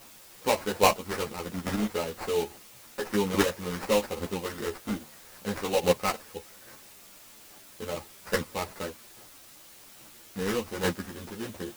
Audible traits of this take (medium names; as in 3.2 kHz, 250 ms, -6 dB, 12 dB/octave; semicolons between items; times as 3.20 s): aliases and images of a low sample rate 3.4 kHz, jitter 20%; chopped level 1.2 Hz, depth 65%, duty 10%; a quantiser's noise floor 10-bit, dither triangular; a shimmering, thickened sound